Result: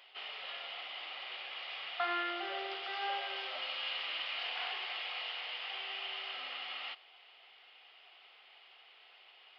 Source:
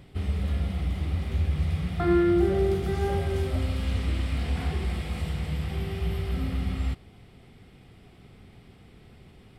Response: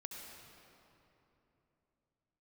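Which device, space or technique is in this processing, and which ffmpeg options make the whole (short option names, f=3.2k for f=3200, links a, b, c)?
musical greeting card: -af "aresample=11025,aresample=44100,highpass=f=710:w=0.5412,highpass=f=710:w=1.3066,equalizer=f=2.9k:t=o:w=0.39:g=10.5,volume=-1dB"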